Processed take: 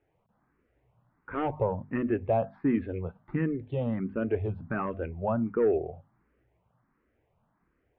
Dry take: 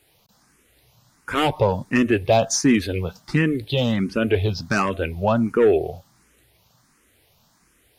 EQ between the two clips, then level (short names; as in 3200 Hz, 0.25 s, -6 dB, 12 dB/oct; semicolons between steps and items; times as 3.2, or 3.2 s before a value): Gaussian blur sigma 4.9 samples; notches 50/100/150/200/250 Hz; -8.0 dB